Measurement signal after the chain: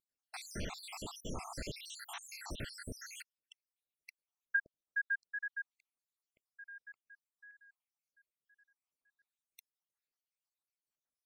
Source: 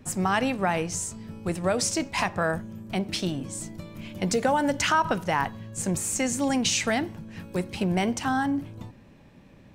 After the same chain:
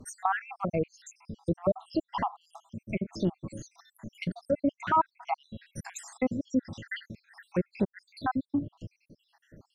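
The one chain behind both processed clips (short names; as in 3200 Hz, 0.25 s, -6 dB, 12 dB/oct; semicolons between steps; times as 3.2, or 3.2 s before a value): random spectral dropouts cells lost 78%; vibrato 1.9 Hz 24 cents; treble ducked by the level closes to 1300 Hz, closed at -28.5 dBFS; gain +1.5 dB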